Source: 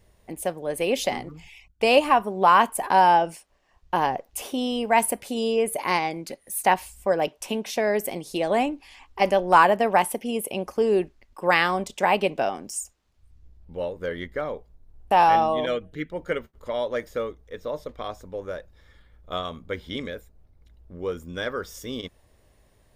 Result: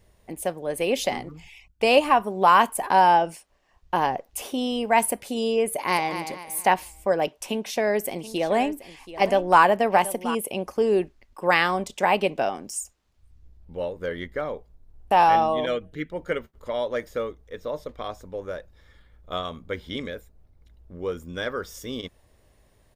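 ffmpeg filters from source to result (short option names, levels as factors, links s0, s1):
-filter_complex "[0:a]asettb=1/sr,asplit=3[s0][s1][s2];[s0]atrim=end=2.264[s3];[s1]atrim=start=2.26:end=2.74,asetpts=PTS-STARTPTS,afade=t=in:d=0.004:c=qsin,afade=t=out:st=0.476:d=0.004:c=qsin,highshelf=f=5300:g=5[s4];[s2]atrim=start=2.736[s5];[s3][s4]acrossfade=d=0.004:c1=hsin:c2=qsin[s6];[s6][s5]acrossfade=d=0.004:c1=qsin:c2=hsin,asplit=2[s7][s8];[s8]afade=t=in:st=5.69:d=0.01,afade=t=out:st=6.14:d=0.01,aecho=0:1:230|460|690|920:0.334965|0.133986|0.0535945|0.0214378[s9];[s7][s9]amix=inputs=2:normalize=0,asettb=1/sr,asplit=3[s10][s11][s12];[s10]atrim=end=7.464[s13];[s11]atrim=start=7.46:end=10.35,asetpts=PTS-STARTPTS,afade=t=in:d=0.004:c=qsin,afade=t=out:st=2.886:d=0.004:c=qsin,aecho=1:1:729:0.188,atrim=end_sample=127449[s14];[s12]atrim=start=10.346[s15];[s13][s14]acrossfade=d=0.004:c1=hsin:c2=qsin[s16];[s16][s15]acrossfade=d=0.004:c1=qsin:c2=hsin"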